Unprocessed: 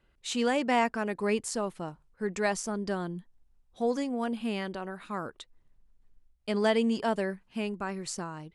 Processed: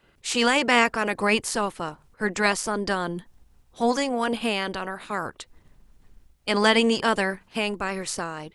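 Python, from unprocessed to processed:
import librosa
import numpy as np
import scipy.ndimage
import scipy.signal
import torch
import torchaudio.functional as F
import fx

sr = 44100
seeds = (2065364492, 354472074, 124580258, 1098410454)

y = fx.spec_clip(x, sr, under_db=14)
y = y * 10.0 ** (6.5 / 20.0)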